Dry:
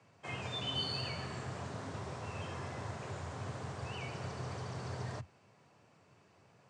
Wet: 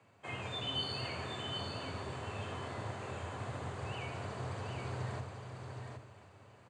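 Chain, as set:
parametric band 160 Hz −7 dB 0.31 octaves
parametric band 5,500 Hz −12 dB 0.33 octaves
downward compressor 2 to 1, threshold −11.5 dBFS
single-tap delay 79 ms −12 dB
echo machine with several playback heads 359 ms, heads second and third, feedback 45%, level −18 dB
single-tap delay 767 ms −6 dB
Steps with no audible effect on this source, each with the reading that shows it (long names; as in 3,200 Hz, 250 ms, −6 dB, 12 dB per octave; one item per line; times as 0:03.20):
downward compressor, threshold −11.5 dBFS: peak of its input −26.0 dBFS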